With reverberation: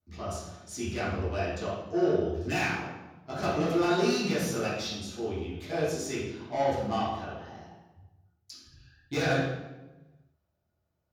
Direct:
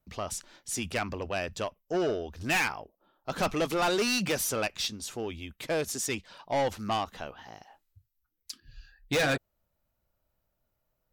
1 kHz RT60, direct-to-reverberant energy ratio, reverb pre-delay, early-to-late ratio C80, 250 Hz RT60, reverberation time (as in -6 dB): 1.0 s, -12.5 dB, 3 ms, 3.5 dB, 1.5 s, 1.1 s